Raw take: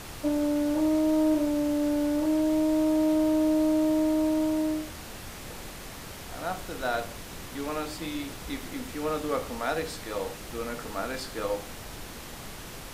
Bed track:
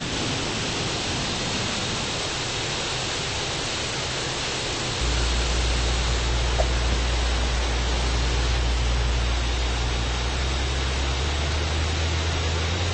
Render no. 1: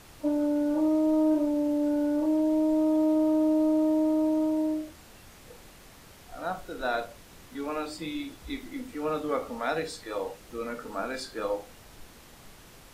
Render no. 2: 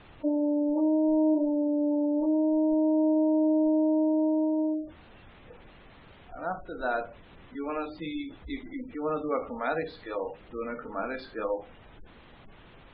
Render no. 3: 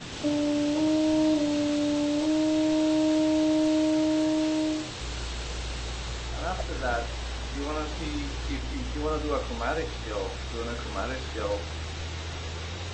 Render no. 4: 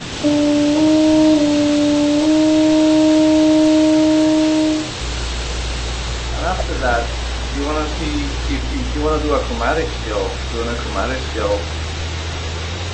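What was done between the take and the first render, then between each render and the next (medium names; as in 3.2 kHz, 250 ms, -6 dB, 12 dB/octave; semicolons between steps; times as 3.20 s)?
noise print and reduce 10 dB
steep low-pass 3.8 kHz; spectral gate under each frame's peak -25 dB strong
add bed track -11 dB
trim +11.5 dB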